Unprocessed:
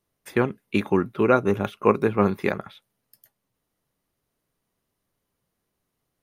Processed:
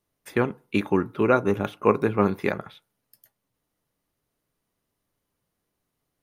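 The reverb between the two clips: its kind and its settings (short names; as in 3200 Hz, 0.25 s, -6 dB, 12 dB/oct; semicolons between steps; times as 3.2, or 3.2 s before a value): FDN reverb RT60 0.36 s, low-frequency decay 0.95×, high-frequency decay 0.4×, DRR 16 dB; gain -1 dB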